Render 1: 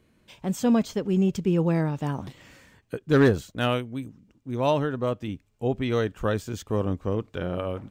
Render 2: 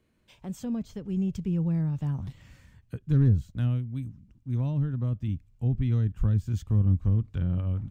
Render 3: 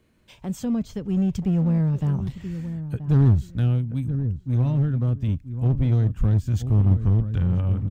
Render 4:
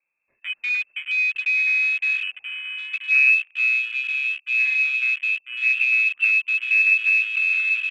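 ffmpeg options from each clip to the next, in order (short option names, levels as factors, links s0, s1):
-filter_complex "[0:a]asubboost=boost=11.5:cutoff=130,acrossover=split=360[s0][s1];[s1]acompressor=threshold=0.0141:ratio=12[s2];[s0][s2]amix=inputs=2:normalize=0,volume=0.422"
-filter_complex "[0:a]asplit=2[s0][s1];[s1]adelay=979,lowpass=f=1100:p=1,volume=0.282,asplit=2[s2][s3];[s3]adelay=979,lowpass=f=1100:p=1,volume=0.19,asplit=2[s4][s5];[s5]adelay=979,lowpass=f=1100:p=1,volume=0.19[s6];[s0][s2][s4][s6]amix=inputs=4:normalize=0,asplit=2[s7][s8];[s8]aeval=exprs='0.0473*(abs(mod(val(0)/0.0473+3,4)-2)-1)':c=same,volume=0.316[s9];[s7][s9]amix=inputs=2:normalize=0,volume=1.68"
-af "lowpass=f=2300:t=q:w=0.5098,lowpass=f=2300:t=q:w=0.6013,lowpass=f=2300:t=q:w=0.9,lowpass=f=2300:t=q:w=2.563,afreqshift=-2700,afwtdn=0.0316"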